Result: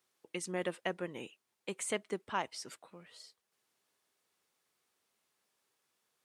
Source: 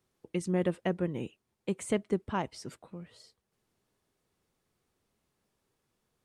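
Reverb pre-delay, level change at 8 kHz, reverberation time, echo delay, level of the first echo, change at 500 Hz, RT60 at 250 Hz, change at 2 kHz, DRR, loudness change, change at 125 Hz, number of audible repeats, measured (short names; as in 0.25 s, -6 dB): none, +3.0 dB, none, none, none, -6.0 dB, none, +1.5 dB, none, -6.0 dB, -13.5 dB, none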